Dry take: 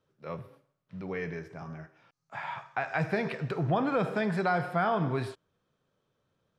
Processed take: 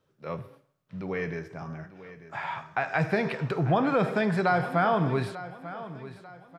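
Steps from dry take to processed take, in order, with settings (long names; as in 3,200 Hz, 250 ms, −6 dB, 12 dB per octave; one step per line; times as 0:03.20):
repeating echo 893 ms, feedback 38%, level −15 dB
level +3.5 dB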